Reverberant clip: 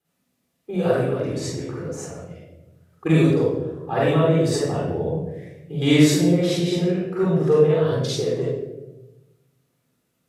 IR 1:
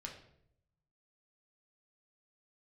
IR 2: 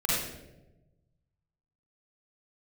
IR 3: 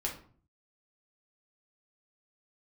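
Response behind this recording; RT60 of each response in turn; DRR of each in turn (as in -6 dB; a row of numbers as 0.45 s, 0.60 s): 2; 0.70 s, 1.0 s, 0.45 s; 0.0 dB, -7.0 dB, -2.0 dB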